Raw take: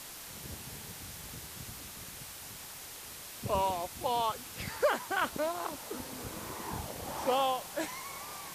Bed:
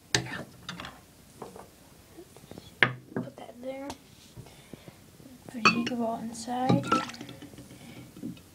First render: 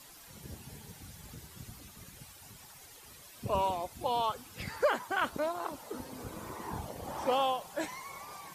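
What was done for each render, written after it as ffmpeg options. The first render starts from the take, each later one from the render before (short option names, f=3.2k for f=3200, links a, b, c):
-af "afftdn=nr=11:nf=-47"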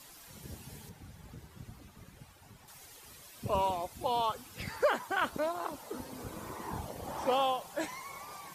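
-filter_complex "[0:a]asettb=1/sr,asplit=3[a][b][c];[a]atrim=end=0.894[d];[b]atrim=start=0.89:end=2.68,asetpts=PTS-STARTPTS,afade=t=in:d=0.004:c=qsin,afade=t=out:st=1.786:d=0.004:c=qsin,highshelf=f=2.9k:g=-11.5[e];[c]atrim=start=2.676[f];[d][e]acrossfade=d=0.004:c1=hsin:c2=qsin[g];[g][f]acrossfade=d=0.004:c1=qsin:c2=hsin"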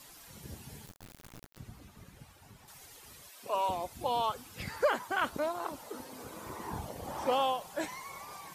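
-filter_complex "[0:a]asettb=1/sr,asplit=3[a][b][c];[a]atrim=end=0.864[d];[b]atrim=start=0.86:end=1.58,asetpts=PTS-STARTPTS,afade=t=in:d=0.004:c=qsin,afade=t=out:st=0.716:d=0.004:c=qsin,acrusher=bits=5:dc=4:mix=0:aa=0.000001[e];[c]atrim=start=1.576[f];[d][e]acrossfade=d=0.004:c1=hsin:c2=qsin[g];[g][f]acrossfade=d=0.004:c1=qsin:c2=hsin,asettb=1/sr,asplit=3[h][i][j];[h]atrim=end=3.294[k];[i]atrim=start=3.29:end=3.69,asetpts=PTS-STARTPTS,afade=t=in:d=0.004:c=qsin,afade=t=out:st=0.396:d=0.004:c=qsin,highpass=510[l];[j]atrim=start=3.686[m];[k][l]acrossfade=d=0.004:c1=hsin:c2=qsin[n];[n][m]acrossfade=d=0.004:c1=qsin:c2=hsin,asettb=1/sr,asplit=3[o][p][q];[o]atrim=end=5.894[r];[p]atrim=start=5.89:end=6.46,asetpts=PTS-STARTPTS,afade=t=in:d=0.004:c=qsin,afade=t=out:st=0.566:d=0.004:c=qsin,lowshelf=f=170:g=-12[s];[q]atrim=start=6.456[t];[r][s]acrossfade=d=0.004:c1=hsin:c2=qsin[u];[u][t]acrossfade=d=0.004:c1=qsin:c2=hsin"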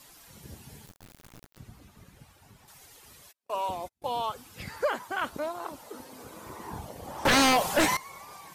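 -filter_complex "[0:a]asplit=3[a][b][c];[a]afade=t=out:st=3.31:d=0.02[d];[b]agate=range=-40dB:threshold=-42dB:ratio=16:release=100:detection=peak,afade=t=in:st=3.31:d=0.02,afade=t=out:st=4.17:d=0.02[e];[c]afade=t=in:st=4.17:d=0.02[f];[d][e][f]amix=inputs=3:normalize=0,asettb=1/sr,asplit=3[g][h][i];[g]atrim=end=7.254[j];[h]atrim=start=7.25:end=7.97,asetpts=PTS-STARTPTS,afade=t=in:d=0.004:c=qsin,afade=t=out:st=0.716:d=0.004:c=qsin,aeval=exprs='0.133*sin(PI/2*5.01*val(0)/0.133)':c=same[k];[i]atrim=start=7.966[l];[j][k]acrossfade=d=0.004:c1=hsin:c2=qsin[m];[m][l]acrossfade=d=0.004:c1=qsin:c2=hsin"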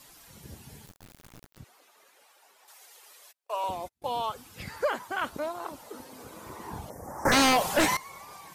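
-filter_complex "[0:a]asettb=1/sr,asplit=3[a][b][c];[a]atrim=end=1.644[d];[b]atrim=start=1.64:end=3.64,asetpts=PTS-STARTPTS,afade=t=in:d=0.004:c=qsin,afade=t=out:st=1.996:d=0.004:c=qsin,highpass=f=460:w=0.5412,highpass=f=460:w=1.3066[e];[c]atrim=start=3.636[f];[d][e]acrossfade=d=0.004:c1=hsin:c2=qsin[g];[g][f]acrossfade=d=0.004:c1=qsin:c2=hsin,asettb=1/sr,asplit=3[h][i][j];[h]atrim=end=6.904[k];[i]atrim=start=6.9:end=7.32,asetpts=PTS-STARTPTS,afade=t=in:d=0.004:c=qsin,afade=t=out:st=0.416:d=0.004:c=qsin,asuperstop=centerf=3300:order=8:qfactor=0.96[l];[j]atrim=start=7.316[m];[k][l]acrossfade=d=0.004:c1=hsin:c2=qsin[n];[n][m]acrossfade=d=0.004:c1=qsin:c2=hsin"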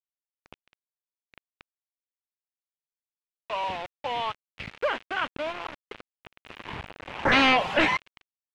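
-af "acrusher=bits=5:mix=0:aa=0.000001,lowpass=f=2.7k:t=q:w=2.2"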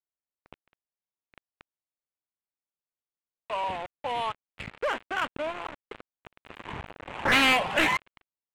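-filter_complex "[0:a]acrossover=split=1300[a][b];[a]asoftclip=type=hard:threshold=-24.5dB[c];[b]adynamicsmooth=sensitivity=6.5:basefreq=2.1k[d];[c][d]amix=inputs=2:normalize=0"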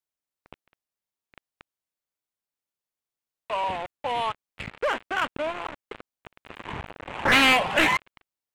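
-af "volume=3dB"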